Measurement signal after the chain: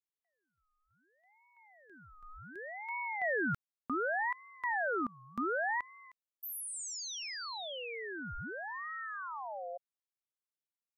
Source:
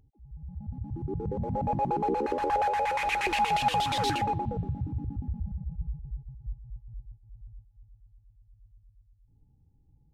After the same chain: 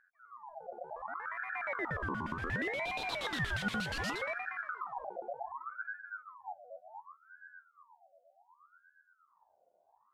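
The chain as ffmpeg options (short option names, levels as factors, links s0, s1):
-af "aeval=exprs='val(0)*sin(2*PI*1100*n/s+1100*0.45/0.67*sin(2*PI*0.67*n/s))':c=same,volume=0.501"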